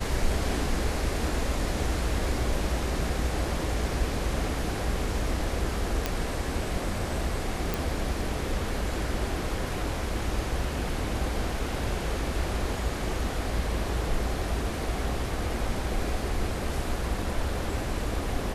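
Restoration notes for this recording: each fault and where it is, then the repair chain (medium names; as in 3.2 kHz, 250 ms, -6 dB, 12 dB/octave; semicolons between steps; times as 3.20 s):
6.06 s: pop -11 dBFS
7.74 s: pop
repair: de-click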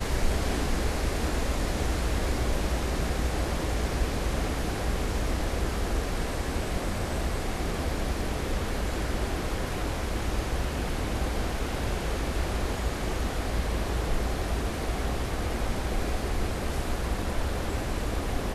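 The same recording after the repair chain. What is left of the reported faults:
nothing left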